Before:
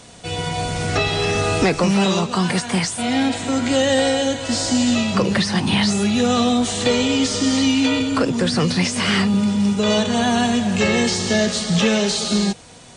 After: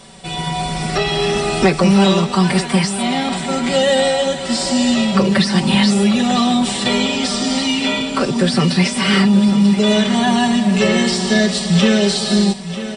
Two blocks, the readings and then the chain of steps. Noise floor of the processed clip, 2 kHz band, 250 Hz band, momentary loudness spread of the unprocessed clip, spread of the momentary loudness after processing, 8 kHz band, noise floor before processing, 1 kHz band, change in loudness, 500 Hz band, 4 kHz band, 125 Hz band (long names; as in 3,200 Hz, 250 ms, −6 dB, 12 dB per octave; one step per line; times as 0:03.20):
−25 dBFS, +2.5 dB, +4.0 dB, 4 LU, 6 LU, +0.5 dB, −42 dBFS, +3.5 dB, +3.0 dB, +3.0 dB, +3.0 dB, +4.0 dB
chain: notch filter 6,500 Hz, Q 6.2
comb filter 5.2 ms, depth 93%
on a send: repeating echo 943 ms, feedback 46%, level −13 dB